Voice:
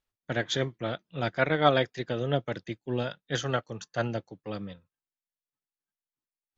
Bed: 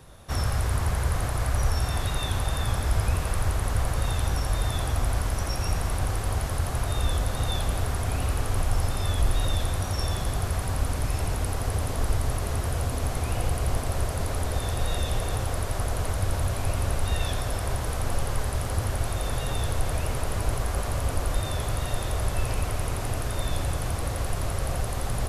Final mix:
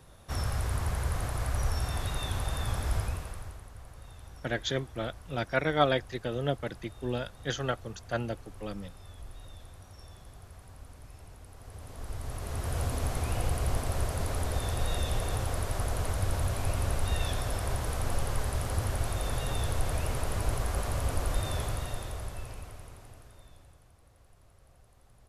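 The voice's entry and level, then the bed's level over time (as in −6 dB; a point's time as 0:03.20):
4.15 s, −2.5 dB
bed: 0:02.96 −5.5 dB
0:03.70 −22.5 dB
0:11.50 −22.5 dB
0:12.80 −3.5 dB
0:21.59 −3.5 dB
0:23.92 −32 dB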